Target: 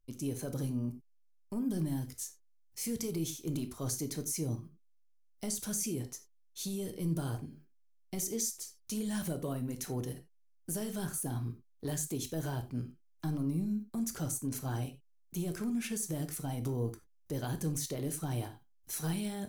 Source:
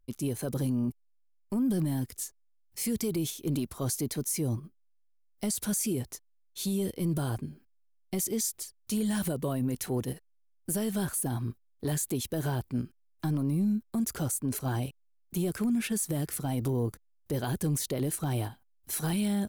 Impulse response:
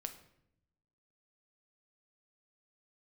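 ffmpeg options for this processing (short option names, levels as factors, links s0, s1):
-filter_complex "[0:a]equalizer=f=6100:w=3.4:g=7[s0];[1:a]atrim=start_sample=2205,atrim=end_sample=4410[s1];[s0][s1]afir=irnorm=-1:irlink=0,volume=0.708"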